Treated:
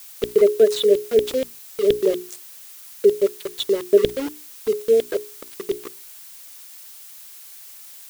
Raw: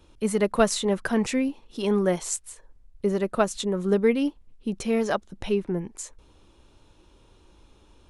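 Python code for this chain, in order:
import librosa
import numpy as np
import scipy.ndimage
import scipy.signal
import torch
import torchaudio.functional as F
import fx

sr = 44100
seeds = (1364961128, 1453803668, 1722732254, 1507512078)

y = fx.spec_quant(x, sr, step_db=30)
y = fx.filter_lfo_highpass(y, sr, shape='square', hz=4.2, low_hz=420.0, high_hz=3400.0, q=7.6)
y = scipy.signal.sosfilt(scipy.signal.cheby1(4, 1.0, [630.0, 1600.0], 'bandstop', fs=sr, output='sos'), y)
y = fx.low_shelf(y, sr, hz=320.0, db=9.0)
y = np.where(np.abs(y) >= 10.0 ** (-23.0 / 20.0), y, 0.0)
y = fx.hum_notches(y, sr, base_hz=60, count=7)
y = fx.dmg_noise_colour(y, sr, seeds[0], colour='blue', level_db=-37.0)
y = F.gain(torch.from_numpy(y), -5.0).numpy()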